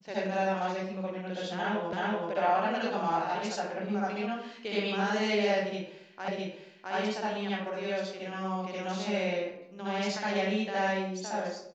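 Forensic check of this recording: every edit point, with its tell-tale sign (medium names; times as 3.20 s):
1.93 s: repeat of the last 0.38 s
6.28 s: repeat of the last 0.66 s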